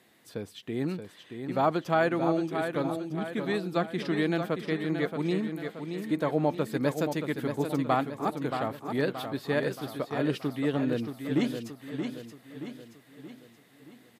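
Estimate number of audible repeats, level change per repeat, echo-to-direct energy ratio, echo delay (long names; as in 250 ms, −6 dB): 5, −6.0 dB, −6.0 dB, 626 ms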